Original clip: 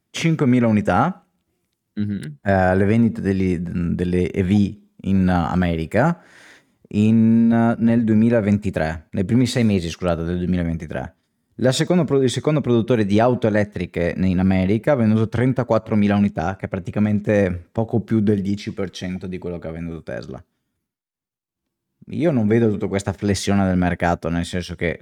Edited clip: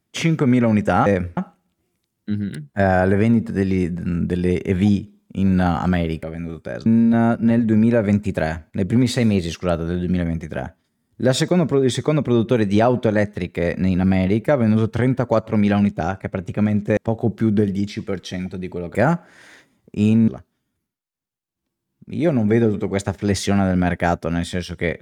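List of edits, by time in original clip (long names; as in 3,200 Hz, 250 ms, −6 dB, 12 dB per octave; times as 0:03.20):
0:05.92–0:07.25: swap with 0:19.65–0:20.28
0:17.36–0:17.67: move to 0:01.06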